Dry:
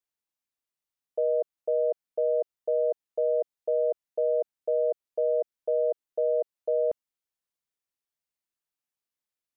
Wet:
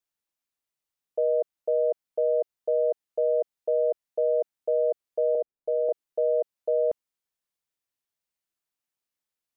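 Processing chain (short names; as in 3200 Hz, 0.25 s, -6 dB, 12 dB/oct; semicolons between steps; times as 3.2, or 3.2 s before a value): 5.35–5.89 Bessel low-pass 740 Hz, order 2; gain +1.5 dB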